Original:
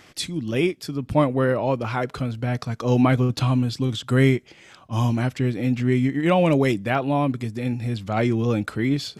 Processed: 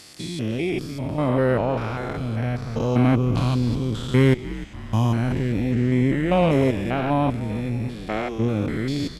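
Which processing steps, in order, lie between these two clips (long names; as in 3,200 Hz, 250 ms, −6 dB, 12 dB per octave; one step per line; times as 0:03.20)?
spectrum averaged block by block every 200 ms
0:07.87–0:08.38: high-pass filter 170 Hz → 520 Hz 12 dB per octave
harmonic generator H 6 −23 dB, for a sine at −7.5 dBFS
echo with shifted repeats 301 ms, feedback 59%, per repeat −84 Hz, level −16 dB
level +1.5 dB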